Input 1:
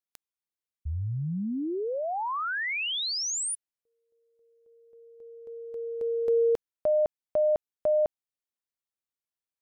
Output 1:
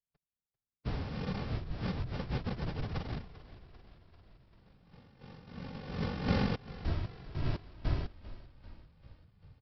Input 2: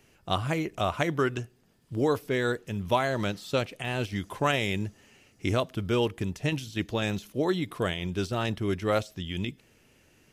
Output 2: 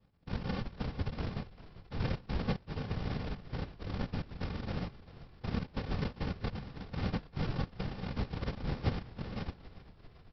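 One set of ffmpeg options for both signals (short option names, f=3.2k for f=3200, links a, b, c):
-filter_complex "[0:a]afftfilt=real='re*pow(10,8/40*sin(2*PI*(1.3*log(max(b,1)*sr/1024/100)/log(2)-(-2.9)*(pts-256)/sr)))':imag='im*pow(10,8/40*sin(2*PI*(1.3*log(max(b,1)*sr/1024/100)/log(2)-(-2.9)*(pts-256)/sr)))':win_size=1024:overlap=0.75,alimiter=limit=-18.5dB:level=0:latency=1:release=85,aresample=11025,acrusher=samples=34:mix=1:aa=0.000001,aresample=44100,afftfilt=real='hypot(re,im)*cos(2*PI*random(0))':imag='hypot(re,im)*sin(2*PI*random(1))':win_size=512:overlap=0.75,asplit=8[a][b][c][d][e][f][g][h];[b]adelay=393,afreqshift=-34,volume=-16.5dB[i];[c]adelay=786,afreqshift=-68,volume=-20.4dB[j];[d]adelay=1179,afreqshift=-102,volume=-24.3dB[k];[e]adelay=1572,afreqshift=-136,volume=-28.1dB[l];[f]adelay=1965,afreqshift=-170,volume=-32dB[m];[g]adelay=2358,afreqshift=-204,volume=-35.9dB[n];[h]adelay=2751,afreqshift=-238,volume=-39.8dB[o];[a][i][j][k][l][m][n][o]amix=inputs=8:normalize=0"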